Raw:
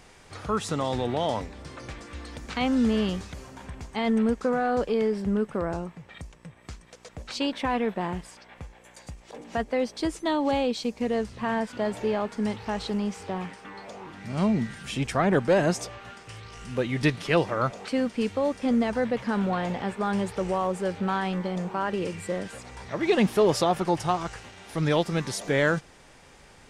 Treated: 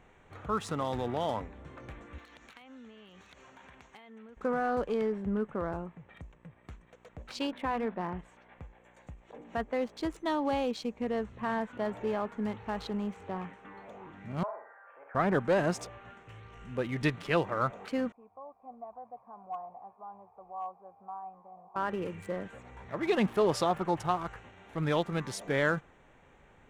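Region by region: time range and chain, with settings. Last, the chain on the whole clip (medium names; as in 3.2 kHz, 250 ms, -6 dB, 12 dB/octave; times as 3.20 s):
2.18–4.37 s: low-pass 6.6 kHz 24 dB/octave + tilt EQ +4 dB/octave + compression 16:1, threshold -40 dBFS
7.47–8.19 s: distance through air 150 m + hum notches 50/100/150/200/250 Hz
14.43–15.15 s: elliptic band-pass 540–1600 Hz, stop band 50 dB + flutter echo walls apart 8 m, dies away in 0.49 s
18.12–21.76 s: cascade formant filter a + hard clipper -26 dBFS
whole clip: local Wiener filter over 9 samples; dynamic bell 1.2 kHz, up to +4 dB, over -40 dBFS, Q 1.4; trim -6 dB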